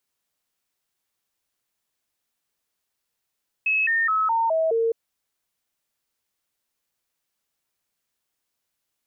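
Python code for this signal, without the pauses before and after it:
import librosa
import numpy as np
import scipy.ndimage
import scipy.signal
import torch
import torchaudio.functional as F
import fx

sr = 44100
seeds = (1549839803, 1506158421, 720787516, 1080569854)

y = fx.stepped_sweep(sr, from_hz=2580.0, direction='down', per_octave=2, tones=6, dwell_s=0.21, gap_s=0.0, level_db=-18.5)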